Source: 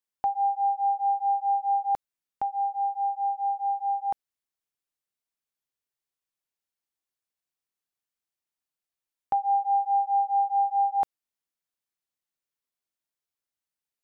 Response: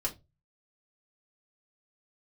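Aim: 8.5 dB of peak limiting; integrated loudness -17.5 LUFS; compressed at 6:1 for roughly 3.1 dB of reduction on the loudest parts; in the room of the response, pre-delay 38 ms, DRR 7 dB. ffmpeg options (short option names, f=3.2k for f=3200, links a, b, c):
-filter_complex "[0:a]acompressor=threshold=-24dB:ratio=6,alimiter=level_in=2.5dB:limit=-24dB:level=0:latency=1,volume=-2.5dB,asplit=2[a][b];[1:a]atrim=start_sample=2205,adelay=38[c];[b][c]afir=irnorm=-1:irlink=0,volume=-10.5dB[d];[a][d]amix=inputs=2:normalize=0,volume=17dB"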